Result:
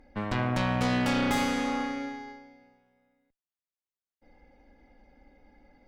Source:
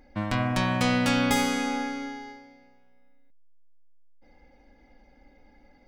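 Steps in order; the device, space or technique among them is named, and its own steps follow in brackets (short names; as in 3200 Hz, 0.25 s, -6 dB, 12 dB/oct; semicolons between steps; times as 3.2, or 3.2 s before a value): tube preamp driven hard (tube stage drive 24 dB, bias 0.7; high shelf 4000 Hz -7 dB); gain +3 dB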